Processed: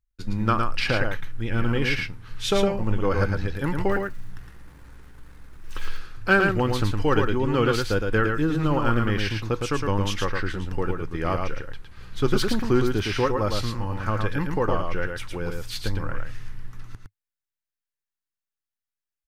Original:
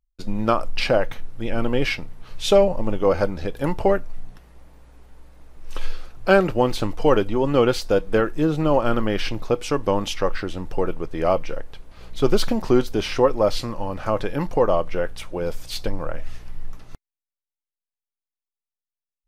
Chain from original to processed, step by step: 3.91–5.88 G.711 law mismatch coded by mu; fifteen-band EQ 100 Hz +9 dB, 630 Hz -10 dB, 1600 Hz +7 dB; hard clip -6 dBFS, distortion -38 dB; echo 0.111 s -4.5 dB; gain -3 dB

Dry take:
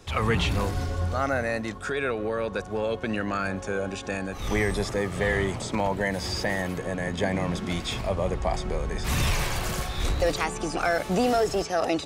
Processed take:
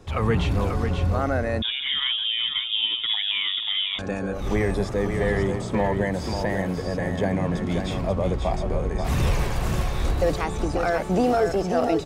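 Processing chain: tilt shelf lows +5 dB, about 1300 Hz; echo 0.538 s -6 dB; 1.62–3.99 inverted band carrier 3600 Hz; gain -1.5 dB

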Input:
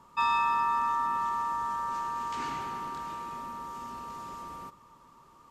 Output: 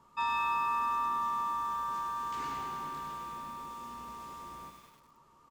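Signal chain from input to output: on a send: early reflections 14 ms -8.5 dB, 34 ms -16.5 dB; on the sum: lo-fi delay 0.101 s, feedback 80%, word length 8-bit, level -8 dB; gain -6 dB

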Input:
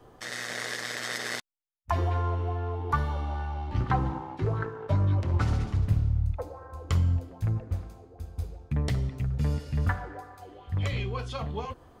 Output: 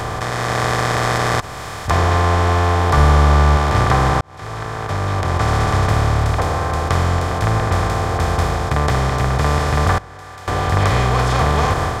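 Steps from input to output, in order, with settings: per-bin compression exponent 0.2; AGC gain up to 8 dB; 2.97–3.57 low shelf 180 Hz +7.5 dB; 4.21–5.74 fade in; 9.98–10.48 gate -7 dBFS, range -20 dB; mismatched tape noise reduction encoder only; gain -1 dB

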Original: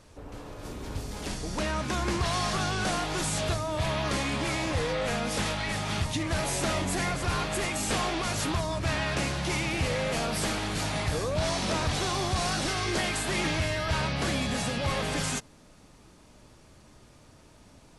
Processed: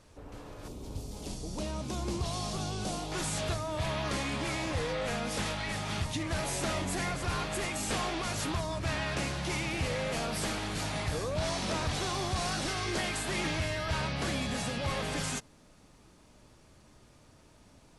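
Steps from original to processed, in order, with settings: 0.68–3.12 bell 1700 Hz -14.5 dB 1.2 oct; gain -4 dB

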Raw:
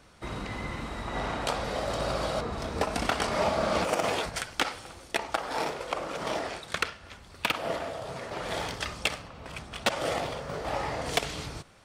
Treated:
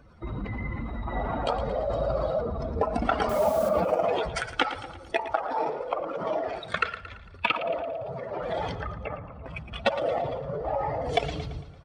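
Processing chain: spectral contrast raised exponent 2.1; 3.29–3.69 requantised 8-bit, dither triangular; 8.75–9.32 LPF 1500 Hz 24 dB/oct; feedback echo 0.113 s, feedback 50%, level -13 dB; gain +3 dB

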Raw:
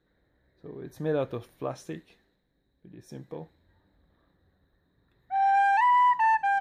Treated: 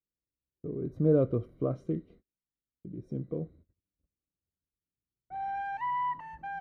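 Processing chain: gate -60 dBFS, range -35 dB; running mean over 51 samples; gain +8 dB

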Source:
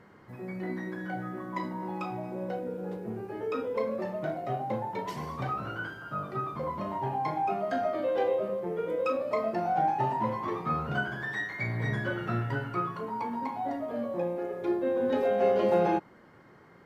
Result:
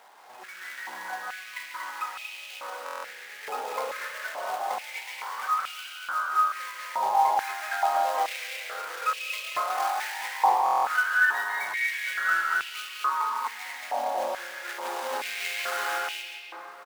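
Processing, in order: companded quantiser 4-bit; loudspeakers at several distances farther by 62 m -10 dB, 81 m -4 dB; reverb RT60 2.7 s, pre-delay 0.139 s, DRR 1.5 dB; stuck buffer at 2.84/10.64, samples 1024, times 8; stepped high-pass 2.3 Hz 790–2700 Hz; gain -3 dB

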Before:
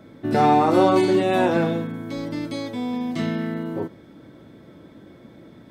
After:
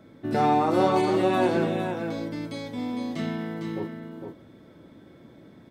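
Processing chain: echo 0.456 s -6 dB; gain -5 dB

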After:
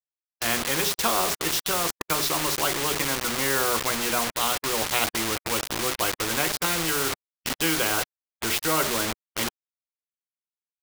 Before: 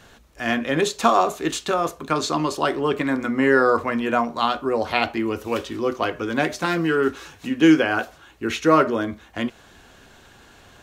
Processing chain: nonlinear frequency compression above 3400 Hz 1.5:1; spectral noise reduction 30 dB; bell 260 Hz -9.5 dB 0.22 oct; notches 50/100/150/200/250/300/350/400/450 Hz; bit-crush 5-bit; spectral compressor 2:1; gain -6 dB

